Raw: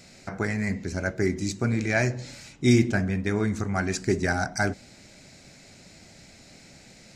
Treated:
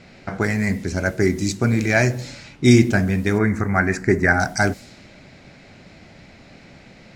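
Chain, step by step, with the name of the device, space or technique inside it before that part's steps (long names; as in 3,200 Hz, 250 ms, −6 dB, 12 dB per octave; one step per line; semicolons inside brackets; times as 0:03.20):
cassette deck with a dynamic noise filter (white noise bed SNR 30 dB; low-pass that shuts in the quiet parts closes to 2,500 Hz, open at −24 dBFS)
0:03.38–0:04.40: high shelf with overshoot 2,500 Hz −8.5 dB, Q 3
level +6.5 dB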